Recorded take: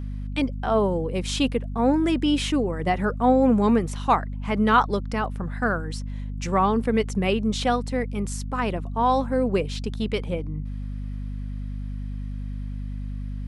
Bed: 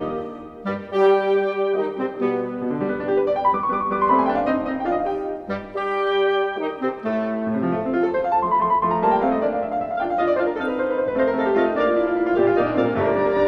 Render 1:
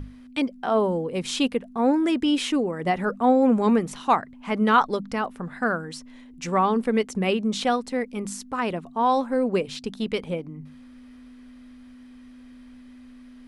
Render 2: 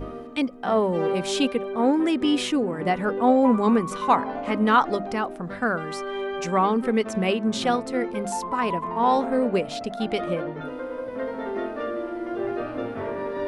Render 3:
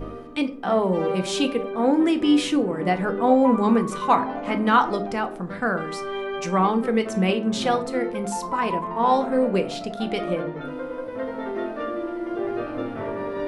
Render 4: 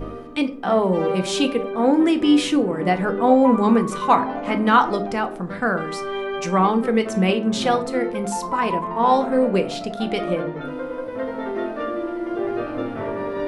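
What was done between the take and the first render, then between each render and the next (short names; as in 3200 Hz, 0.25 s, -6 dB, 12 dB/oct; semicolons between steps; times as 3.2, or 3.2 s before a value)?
notches 50/100/150/200 Hz
add bed -10.5 dB
shoebox room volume 330 m³, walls furnished, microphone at 0.74 m
gain +2.5 dB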